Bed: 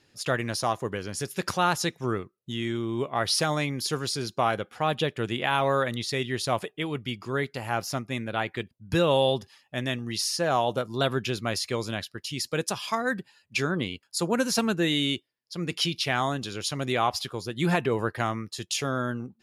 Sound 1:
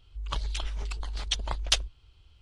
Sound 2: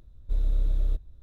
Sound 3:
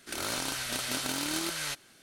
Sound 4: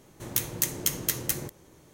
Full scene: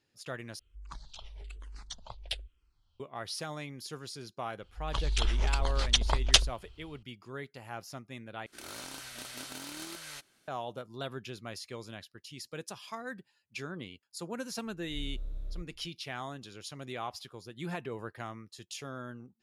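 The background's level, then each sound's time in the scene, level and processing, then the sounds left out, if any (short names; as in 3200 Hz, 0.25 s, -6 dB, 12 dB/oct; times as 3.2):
bed -13.5 dB
0.59 replace with 1 -10 dB + endless phaser -1.1 Hz
4.62 add 1 -4.5 dB + AGC
8.46 replace with 3 -10.5 dB
14.66 add 2 -14.5 dB + spectral swells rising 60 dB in 0.30 s
not used: 4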